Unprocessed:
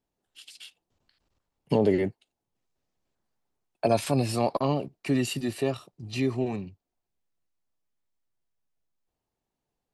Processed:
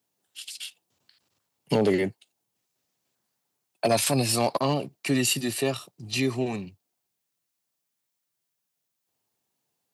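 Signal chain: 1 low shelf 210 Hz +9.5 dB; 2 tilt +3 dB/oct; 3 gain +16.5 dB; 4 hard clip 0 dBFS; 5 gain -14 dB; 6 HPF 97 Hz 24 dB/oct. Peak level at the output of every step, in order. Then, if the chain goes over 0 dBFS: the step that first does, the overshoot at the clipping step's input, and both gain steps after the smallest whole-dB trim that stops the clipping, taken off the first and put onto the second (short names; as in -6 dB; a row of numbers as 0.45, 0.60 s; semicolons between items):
-8.0, -10.0, +6.5, 0.0, -14.0, -11.0 dBFS; step 3, 6.5 dB; step 3 +9.5 dB, step 5 -7 dB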